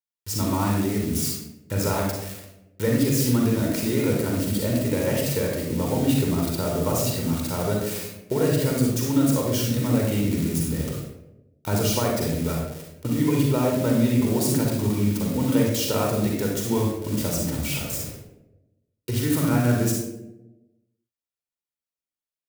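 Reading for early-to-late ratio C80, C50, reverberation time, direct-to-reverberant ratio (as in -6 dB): 4.5 dB, 1.0 dB, 0.95 s, -1.0 dB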